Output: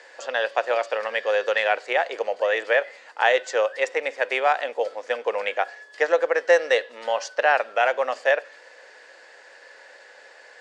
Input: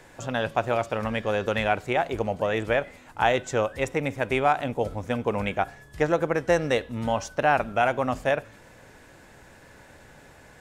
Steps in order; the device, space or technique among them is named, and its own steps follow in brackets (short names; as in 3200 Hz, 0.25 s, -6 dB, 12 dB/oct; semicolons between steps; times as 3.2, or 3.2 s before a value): phone speaker on a table (speaker cabinet 460–7900 Hz, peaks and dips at 510 Hz +7 dB, 1800 Hz +9 dB, 2900 Hz +4 dB, 4600 Hz +10 dB)